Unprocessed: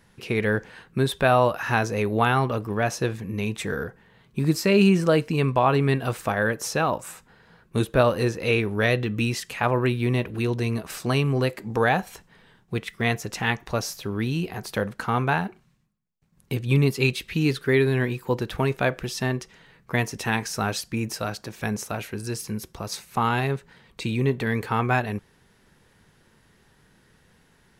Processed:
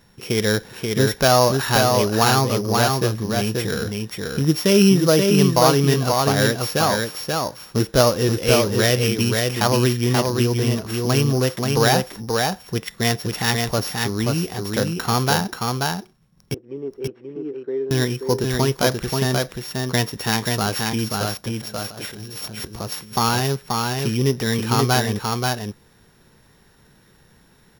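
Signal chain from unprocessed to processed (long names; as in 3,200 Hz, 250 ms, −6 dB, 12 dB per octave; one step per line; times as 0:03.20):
samples sorted by size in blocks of 8 samples
0:16.54–0:17.91: four-pole ladder band-pass 460 Hz, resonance 40%
0:21.60–0:22.72: compressor whose output falls as the input rises −39 dBFS, ratio −1
single-tap delay 532 ms −3.5 dB
level +3.5 dB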